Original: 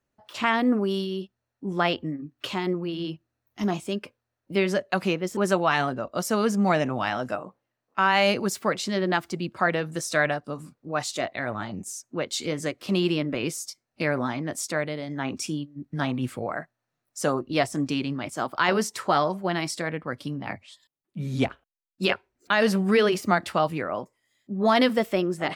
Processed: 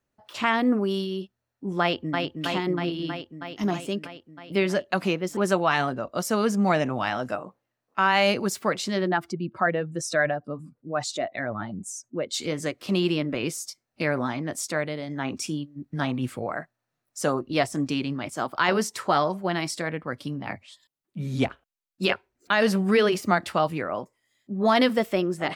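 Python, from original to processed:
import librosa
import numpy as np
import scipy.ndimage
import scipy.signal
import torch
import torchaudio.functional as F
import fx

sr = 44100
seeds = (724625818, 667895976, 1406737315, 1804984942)

y = fx.echo_throw(x, sr, start_s=1.81, length_s=0.44, ms=320, feedback_pct=75, wet_db=-3.5)
y = fx.spec_expand(y, sr, power=1.5, at=(9.07, 12.33), fade=0.02)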